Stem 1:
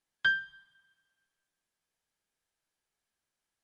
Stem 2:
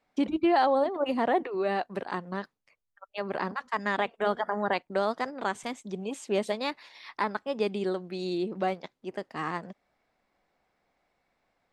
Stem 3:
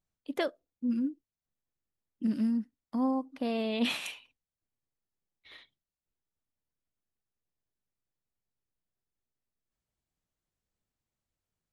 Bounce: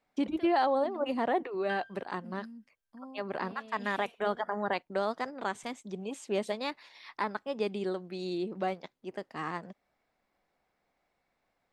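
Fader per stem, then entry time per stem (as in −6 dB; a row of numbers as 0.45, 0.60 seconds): −13.5, −3.5, −18.5 decibels; 1.45, 0.00, 0.00 seconds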